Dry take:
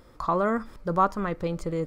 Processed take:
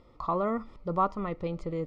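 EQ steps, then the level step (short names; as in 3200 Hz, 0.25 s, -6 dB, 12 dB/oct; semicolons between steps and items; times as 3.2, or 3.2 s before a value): Butterworth band-stop 1600 Hz, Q 3.3; LPF 3900 Hz 12 dB/oct; -4.0 dB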